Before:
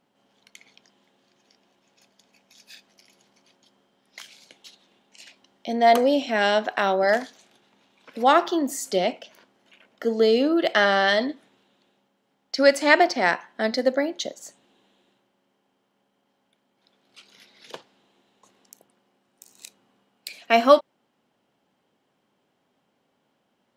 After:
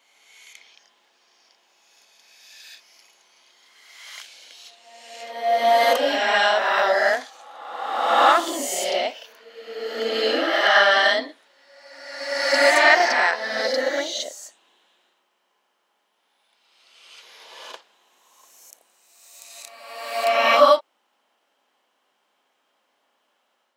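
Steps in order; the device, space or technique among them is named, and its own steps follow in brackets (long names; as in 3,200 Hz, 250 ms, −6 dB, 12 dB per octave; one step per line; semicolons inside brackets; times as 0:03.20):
ghost voice (reversed playback; convolution reverb RT60 1.5 s, pre-delay 25 ms, DRR −4 dB; reversed playback; high-pass filter 650 Hz 12 dB per octave)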